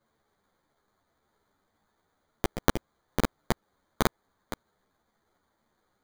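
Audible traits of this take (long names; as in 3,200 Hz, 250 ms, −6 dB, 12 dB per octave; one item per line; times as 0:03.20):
aliases and images of a low sample rate 2,700 Hz, jitter 0%
a shimmering, thickened sound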